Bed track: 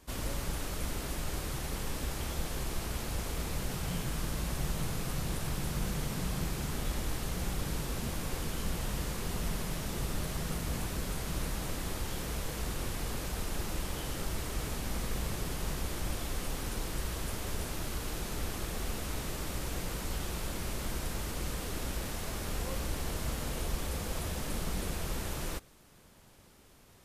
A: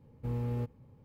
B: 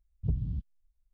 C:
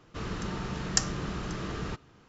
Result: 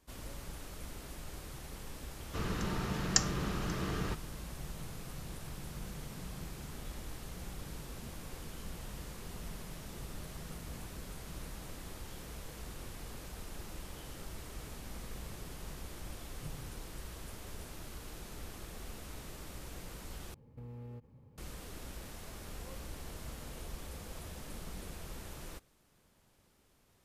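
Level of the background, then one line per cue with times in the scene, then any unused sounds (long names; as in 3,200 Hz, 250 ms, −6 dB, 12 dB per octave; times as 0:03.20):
bed track −10 dB
0:02.19: mix in C −1.5 dB
0:16.17: mix in B −17 dB + comb filter 6.7 ms
0:20.34: overwrite with A −2 dB + downward compressor, threshold −43 dBFS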